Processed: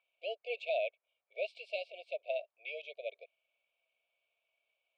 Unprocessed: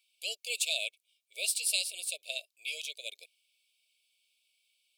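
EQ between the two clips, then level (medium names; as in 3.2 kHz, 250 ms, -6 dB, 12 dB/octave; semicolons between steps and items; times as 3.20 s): Bessel low-pass 1.1 kHz, order 4; resonant low shelf 410 Hz -13.5 dB, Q 1.5; +11.5 dB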